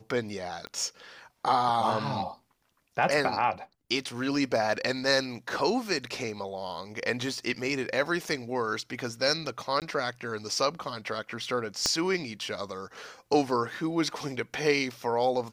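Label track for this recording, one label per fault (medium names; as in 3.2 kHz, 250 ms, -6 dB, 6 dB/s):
0.670000	0.670000	pop -25 dBFS
9.800000	9.820000	dropout 18 ms
11.860000	11.860000	pop -11 dBFS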